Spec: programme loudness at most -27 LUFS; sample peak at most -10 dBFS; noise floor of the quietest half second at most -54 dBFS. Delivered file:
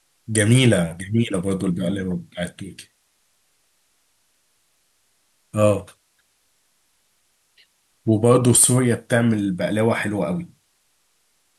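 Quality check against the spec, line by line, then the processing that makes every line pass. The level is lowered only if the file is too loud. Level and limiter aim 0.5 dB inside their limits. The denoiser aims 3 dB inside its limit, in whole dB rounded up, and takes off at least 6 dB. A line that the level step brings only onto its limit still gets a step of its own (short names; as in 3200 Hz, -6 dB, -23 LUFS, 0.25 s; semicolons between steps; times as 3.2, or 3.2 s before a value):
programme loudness -19.5 LUFS: fail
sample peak -4.0 dBFS: fail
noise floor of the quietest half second -65 dBFS: OK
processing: gain -8 dB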